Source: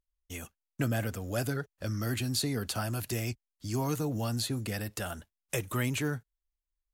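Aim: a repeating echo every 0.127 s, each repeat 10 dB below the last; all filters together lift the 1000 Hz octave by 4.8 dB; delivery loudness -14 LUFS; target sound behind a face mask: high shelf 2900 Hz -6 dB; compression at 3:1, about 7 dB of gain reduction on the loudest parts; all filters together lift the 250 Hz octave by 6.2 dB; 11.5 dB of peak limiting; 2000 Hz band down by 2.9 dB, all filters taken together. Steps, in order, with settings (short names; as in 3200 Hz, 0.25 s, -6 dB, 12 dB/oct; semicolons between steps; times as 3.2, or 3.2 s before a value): bell 250 Hz +7 dB; bell 1000 Hz +8.5 dB; bell 2000 Hz -5.5 dB; compressor 3:1, threshold -32 dBFS; limiter -31.5 dBFS; high shelf 2900 Hz -6 dB; feedback echo 0.127 s, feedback 32%, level -10 dB; gain +27 dB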